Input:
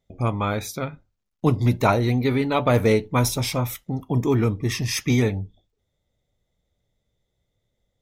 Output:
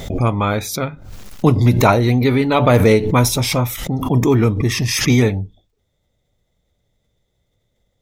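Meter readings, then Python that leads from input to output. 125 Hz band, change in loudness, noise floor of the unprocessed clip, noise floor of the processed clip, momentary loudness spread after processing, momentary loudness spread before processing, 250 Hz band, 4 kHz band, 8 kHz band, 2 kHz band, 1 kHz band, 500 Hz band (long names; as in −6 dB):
+7.0 dB, +6.5 dB, −77 dBFS, −69 dBFS, 10 LU, 11 LU, +6.5 dB, +7.5 dB, +7.5 dB, +7.0 dB, +6.5 dB, +6.5 dB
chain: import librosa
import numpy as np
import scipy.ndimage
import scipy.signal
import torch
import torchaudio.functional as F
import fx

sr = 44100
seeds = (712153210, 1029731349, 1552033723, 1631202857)

y = fx.pre_swell(x, sr, db_per_s=65.0)
y = y * 10.0 ** (6.0 / 20.0)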